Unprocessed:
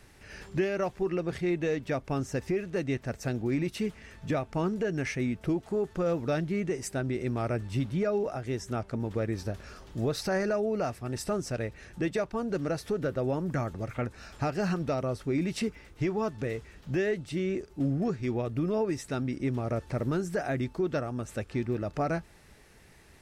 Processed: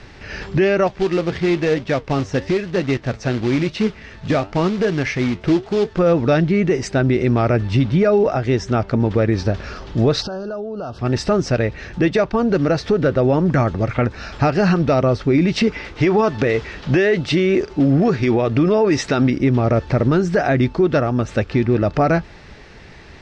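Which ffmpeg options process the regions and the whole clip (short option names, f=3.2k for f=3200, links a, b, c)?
-filter_complex "[0:a]asettb=1/sr,asplit=3[a][b][c];[a]atrim=end=0.874[d];[b]atrim=start=0.87:end=5.99,asetpts=PTS-STARTPTS,afade=t=in:d=0.004:c=qsin,afade=t=out:st=5.116:d=0.004:c=qsin,acrusher=bits=3:mode=log:mix=0:aa=0.000001,flanger=delay=4.3:depth=7.4:regen=80:speed=1:shape=triangular[e];[c]atrim=start=5.986[f];[d][e]acrossfade=d=0.004:c1=hsin:c2=qsin[g];[g][f]acrossfade=d=0.004:c1=qsin:c2=hsin,asettb=1/sr,asplit=3[h][i][j];[h]atrim=end=10.224[k];[i]atrim=start=10.22:end=10.99,asetpts=PTS-STARTPTS,afade=t=in:d=0.004:c=qsin,afade=t=out:st=0.766:d=0.004:c=qsin,equalizer=f=7.7k:t=o:w=0.71:g=-7.5,acompressor=threshold=-39dB:ratio=12:attack=3.2:release=140:knee=1:detection=peak,asuperstop=centerf=2100:order=8:qfactor=1.7[l];[j]atrim=start=10.986[m];[k][l]acrossfade=d=0.004:c1=hsin:c2=qsin[n];[n][m]acrossfade=d=0.004:c1=qsin:c2=hsin,asettb=1/sr,asplit=3[o][p][q];[o]atrim=end=15.674[r];[p]atrim=start=15.67:end=19.3,asetpts=PTS-STARTPTS,afade=t=in:d=0.004:c=qsin,afade=t=out:st=3.626:d=0.004:c=qsin,lowshelf=f=230:g=-8.5,acontrast=72[s];[q]atrim=start=19.296[t];[r][s]acrossfade=d=0.004:c1=hsin:c2=qsin[u];[u][t]acrossfade=d=0.004:c1=qsin:c2=hsin,lowpass=f=5.3k:w=0.5412,lowpass=f=5.3k:w=1.3066,alimiter=level_in=22.5dB:limit=-1dB:release=50:level=0:latency=1,volume=-7dB"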